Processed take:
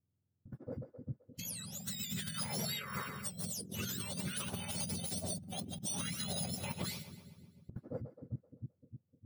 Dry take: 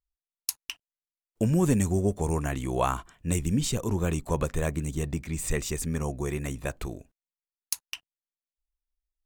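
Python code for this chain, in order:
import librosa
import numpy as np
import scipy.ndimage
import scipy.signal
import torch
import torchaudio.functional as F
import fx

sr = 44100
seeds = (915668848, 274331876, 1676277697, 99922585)

y = fx.octave_mirror(x, sr, pivot_hz=1200.0)
y = fx.echo_split(y, sr, split_hz=370.0, low_ms=304, high_ms=130, feedback_pct=52, wet_db=-15)
y = fx.over_compress(y, sr, threshold_db=-37.0, ratio=-1.0)
y = y * librosa.db_to_amplitude(-5.0)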